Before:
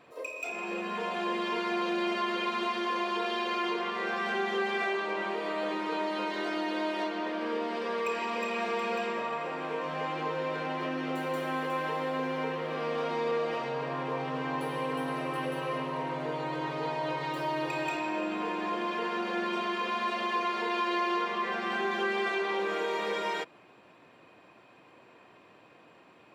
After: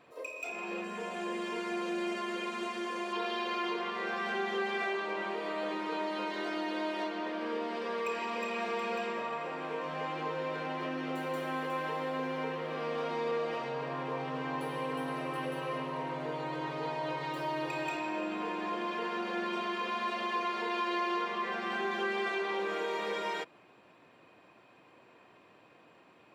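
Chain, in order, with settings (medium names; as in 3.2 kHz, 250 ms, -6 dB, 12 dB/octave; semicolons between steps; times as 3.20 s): 0.84–3.13 s: graphic EQ 1/4/8 kHz -5/-7/+9 dB; trim -3 dB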